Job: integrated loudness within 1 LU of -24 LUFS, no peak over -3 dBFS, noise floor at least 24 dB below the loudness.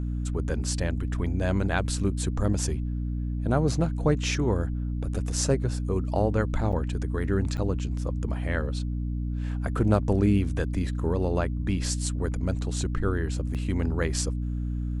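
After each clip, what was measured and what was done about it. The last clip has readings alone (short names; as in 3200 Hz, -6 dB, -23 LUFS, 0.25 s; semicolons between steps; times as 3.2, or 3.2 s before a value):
dropouts 3; longest dropout 7.5 ms; hum 60 Hz; harmonics up to 300 Hz; hum level -27 dBFS; loudness -27.5 LUFS; peak -7.5 dBFS; loudness target -24.0 LUFS
-> interpolate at 6.72/7.57/13.54, 7.5 ms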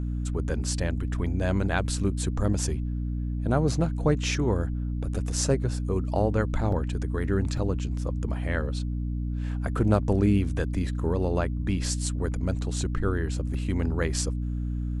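dropouts 0; hum 60 Hz; harmonics up to 300 Hz; hum level -27 dBFS
-> de-hum 60 Hz, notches 5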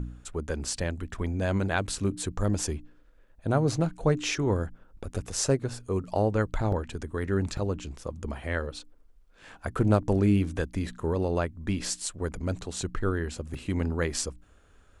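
hum none; loudness -29.5 LUFS; peak -9.0 dBFS; loudness target -24.0 LUFS
-> gain +5.5 dB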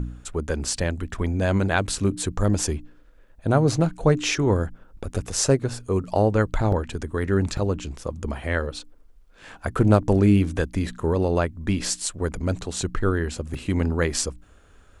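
loudness -24.0 LUFS; peak -3.5 dBFS; noise floor -52 dBFS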